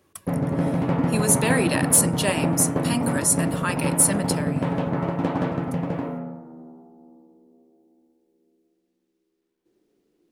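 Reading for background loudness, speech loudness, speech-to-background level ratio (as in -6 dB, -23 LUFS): -25.0 LUFS, -22.0 LUFS, 3.0 dB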